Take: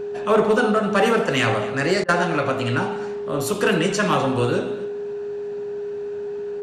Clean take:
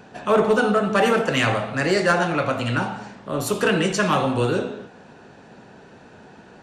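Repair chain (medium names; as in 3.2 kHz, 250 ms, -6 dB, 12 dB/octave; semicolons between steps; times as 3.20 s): band-stop 410 Hz, Q 30; interpolate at 2.04 s, 44 ms; inverse comb 252 ms -18.5 dB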